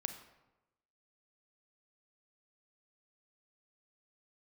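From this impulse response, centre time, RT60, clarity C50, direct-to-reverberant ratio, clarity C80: 15 ms, 1.0 s, 9.5 dB, 7.5 dB, 11.5 dB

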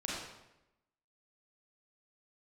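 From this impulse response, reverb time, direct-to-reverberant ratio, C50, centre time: 0.90 s, -5.5 dB, -1.5 dB, 77 ms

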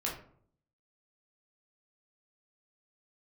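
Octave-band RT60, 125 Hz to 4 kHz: 0.85, 0.75, 0.65, 0.55, 0.40, 0.30 s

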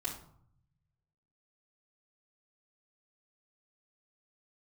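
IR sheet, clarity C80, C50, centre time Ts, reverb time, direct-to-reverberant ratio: 11.0 dB, 7.0 dB, 25 ms, 0.60 s, -8.5 dB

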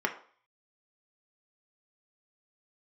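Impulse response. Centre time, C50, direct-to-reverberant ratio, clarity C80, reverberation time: 12 ms, 11.5 dB, 2.0 dB, 15.5 dB, 0.50 s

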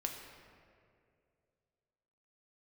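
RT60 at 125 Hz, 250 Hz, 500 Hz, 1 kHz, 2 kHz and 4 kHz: 2.8, 2.5, 2.7, 2.0, 1.9, 1.3 s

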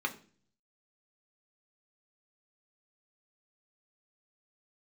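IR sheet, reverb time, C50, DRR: 0.45 s, 15.0 dB, 3.0 dB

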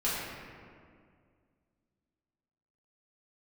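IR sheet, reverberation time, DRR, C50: 2.1 s, -10.0 dB, -1.5 dB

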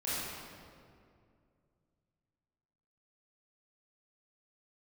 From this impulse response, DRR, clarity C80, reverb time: -11.0 dB, -2.0 dB, 2.3 s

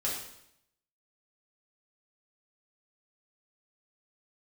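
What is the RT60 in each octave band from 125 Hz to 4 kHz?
0.85, 0.80, 0.75, 0.75, 0.75, 0.75 s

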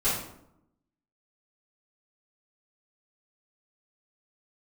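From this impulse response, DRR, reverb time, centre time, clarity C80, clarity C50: -14.0 dB, 0.75 s, 50 ms, 6.0 dB, 2.0 dB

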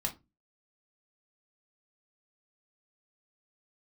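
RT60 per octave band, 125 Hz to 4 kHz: 0.40, 0.40, 0.25, 0.20, 0.20, 0.15 s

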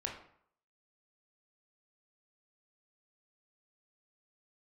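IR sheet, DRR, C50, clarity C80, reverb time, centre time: -0.5 dB, 5.5 dB, 9.5 dB, 0.65 s, 29 ms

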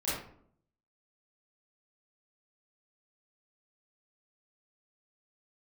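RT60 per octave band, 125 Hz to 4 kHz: 0.85, 0.80, 0.70, 0.55, 0.45, 0.35 s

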